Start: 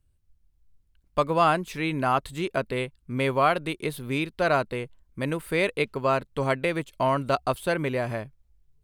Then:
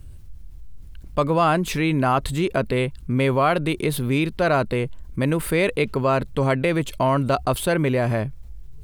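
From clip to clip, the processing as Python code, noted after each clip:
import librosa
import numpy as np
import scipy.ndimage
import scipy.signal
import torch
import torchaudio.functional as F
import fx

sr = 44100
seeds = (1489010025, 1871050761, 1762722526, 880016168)

y = fx.low_shelf(x, sr, hz=380.0, db=6.0)
y = fx.env_flatten(y, sr, amount_pct=50)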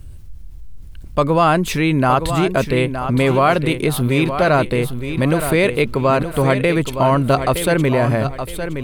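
y = fx.echo_feedback(x, sr, ms=917, feedback_pct=32, wet_db=-9.0)
y = y * librosa.db_to_amplitude(4.5)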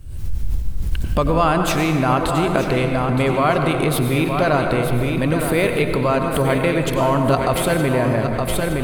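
y = fx.recorder_agc(x, sr, target_db=-9.5, rise_db_per_s=73.0, max_gain_db=30)
y = fx.rev_plate(y, sr, seeds[0], rt60_s=2.2, hf_ratio=0.5, predelay_ms=80, drr_db=4.5)
y = y * librosa.db_to_amplitude(-3.5)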